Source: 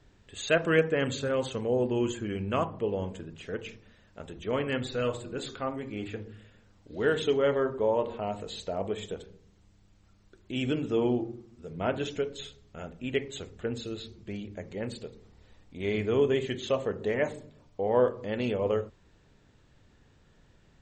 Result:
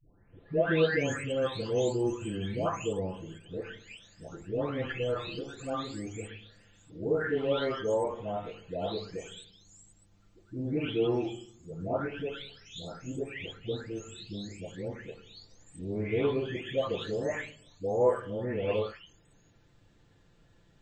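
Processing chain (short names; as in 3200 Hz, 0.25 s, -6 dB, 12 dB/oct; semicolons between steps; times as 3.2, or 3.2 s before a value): spectral delay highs late, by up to 0.821 s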